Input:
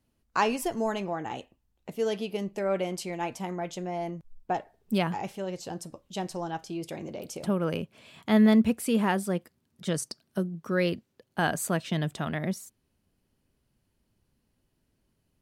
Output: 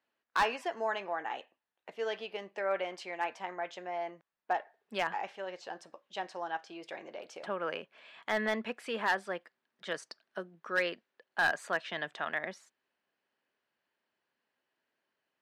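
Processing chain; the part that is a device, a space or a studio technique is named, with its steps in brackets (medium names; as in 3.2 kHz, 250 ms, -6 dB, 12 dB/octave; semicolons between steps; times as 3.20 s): megaphone (band-pass 660–3200 Hz; peaking EQ 1.7 kHz +6 dB 0.32 oct; hard clipper -21.5 dBFS, distortion -14 dB)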